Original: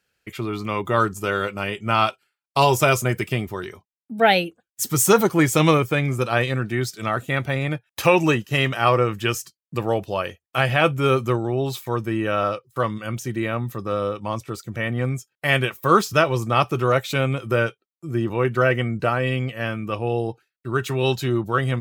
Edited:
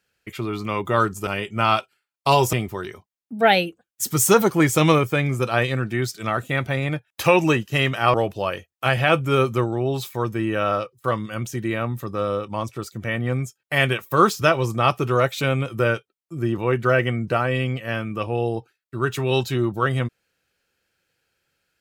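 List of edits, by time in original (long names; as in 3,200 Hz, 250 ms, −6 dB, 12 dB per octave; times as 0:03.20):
0:01.27–0:01.57: remove
0:02.83–0:03.32: remove
0:08.93–0:09.86: remove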